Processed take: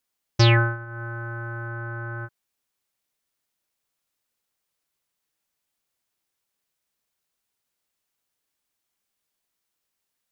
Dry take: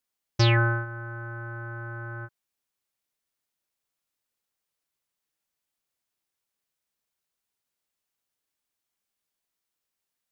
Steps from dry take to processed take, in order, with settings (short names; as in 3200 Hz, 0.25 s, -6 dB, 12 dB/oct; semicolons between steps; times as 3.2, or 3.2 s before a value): 0.53–1.03 dip -11 dB, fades 0.24 s; 1.68–2.18 LPF 4600 Hz; gain +4 dB